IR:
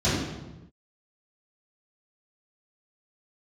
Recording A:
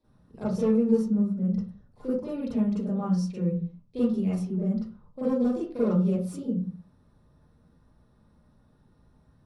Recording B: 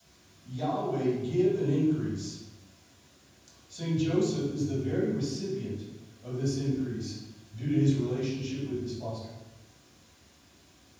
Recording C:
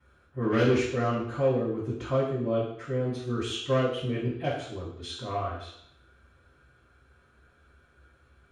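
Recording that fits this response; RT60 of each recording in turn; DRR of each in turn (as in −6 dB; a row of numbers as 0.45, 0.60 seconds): B; 0.45 s, non-exponential decay, 0.70 s; −11.0, −13.0, −16.0 decibels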